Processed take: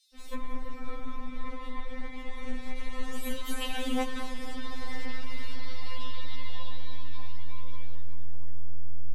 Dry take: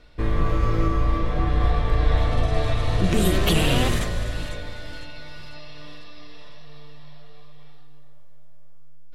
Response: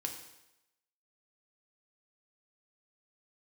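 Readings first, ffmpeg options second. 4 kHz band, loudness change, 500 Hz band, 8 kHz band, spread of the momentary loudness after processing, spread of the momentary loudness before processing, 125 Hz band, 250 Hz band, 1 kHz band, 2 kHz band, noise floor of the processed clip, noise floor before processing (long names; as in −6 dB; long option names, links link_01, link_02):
−10.0 dB, −16.5 dB, −14.0 dB, −11.0 dB, 16 LU, 21 LU, −17.0 dB, −11.0 dB, −10.5 dB, −9.0 dB, −38 dBFS, −34 dBFS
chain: -filter_complex "[0:a]acrossover=split=4600[link_01][link_02];[link_01]adelay=150[link_03];[link_03][link_02]amix=inputs=2:normalize=0,acompressor=threshold=-33dB:ratio=12,afftfilt=real='re*3.46*eq(mod(b,12),0)':imag='im*3.46*eq(mod(b,12),0)':win_size=2048:overlap=0.75,volume=9dB"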